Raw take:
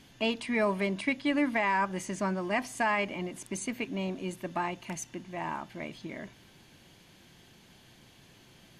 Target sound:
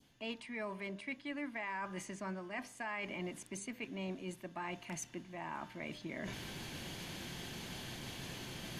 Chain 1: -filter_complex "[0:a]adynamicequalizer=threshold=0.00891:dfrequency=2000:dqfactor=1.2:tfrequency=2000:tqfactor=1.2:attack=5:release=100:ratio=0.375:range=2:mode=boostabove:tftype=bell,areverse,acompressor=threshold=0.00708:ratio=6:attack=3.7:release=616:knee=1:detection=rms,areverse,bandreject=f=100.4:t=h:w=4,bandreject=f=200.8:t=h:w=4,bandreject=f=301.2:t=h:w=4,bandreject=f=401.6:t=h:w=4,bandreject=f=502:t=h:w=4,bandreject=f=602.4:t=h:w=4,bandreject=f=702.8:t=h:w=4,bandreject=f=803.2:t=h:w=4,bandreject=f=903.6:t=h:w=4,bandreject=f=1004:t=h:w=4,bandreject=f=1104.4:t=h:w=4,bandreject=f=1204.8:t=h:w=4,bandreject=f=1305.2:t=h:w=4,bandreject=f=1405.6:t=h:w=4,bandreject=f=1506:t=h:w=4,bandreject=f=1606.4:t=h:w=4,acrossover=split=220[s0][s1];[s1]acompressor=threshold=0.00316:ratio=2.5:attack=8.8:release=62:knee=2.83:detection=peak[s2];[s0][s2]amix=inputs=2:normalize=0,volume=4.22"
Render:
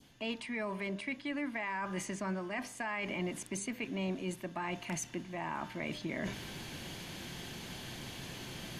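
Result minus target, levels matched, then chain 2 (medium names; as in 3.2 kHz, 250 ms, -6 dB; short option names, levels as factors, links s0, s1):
compression: peak gain reduction -6.5 dB
-filter_complex "[0:a]adynamicequalizer=threshold=0.00891:dfrequency=2000:dqfactor=1.2:tfrequency=2000:tqfactor=1.2:attack=5:release=100:ratio=0.375:range=2:mode=boostabove:tftype=bell,areverse,acompressor=threshold=0.00282:ratio=6:attack=3.7:release=616:knee=1:detection=rms,areverse,bandreject=f=100.4:t=h:w=4,bandreject=f=200.8:t=h:w=4,bandreject=f=301.2:t=h:w=4,bandreject=f=401.6:t=h:w=4,bandreject=f=502:t=h:w=4,bandreject=f=602.4:t=h:w=4,bandreject=f=702.8:t=h:w=4,bandreject=f=803.2:t=h:w=4,bandreject=f=903.6:t=h:w=4,bandreject=f=1004:t=h:w=4,bandreject=f=1104.4:t=h:w=4,bandreject=f=1204.8:t=h:w=4,bandreject=f=1305.2:t=h:w=4,bandreject=f=1405.6:t=h:w=4,bandreject=f=1506:t=h:w=4,bandreject=f=1606.4:t=h:w=4,acrossover=split=220[s0][s1];[s1]acompressor=threshold=0.00316:ratio=2.5:attack=8.8:release=62:knee=2.83:detection=peak[s2];[s0][s2]amix=inputs=2:normalize=0,volume=4.22"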